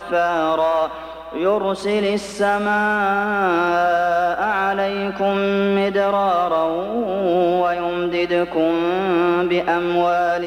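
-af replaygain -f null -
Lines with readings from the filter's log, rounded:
track_gain = +1.4 dB
track_peak = 0.331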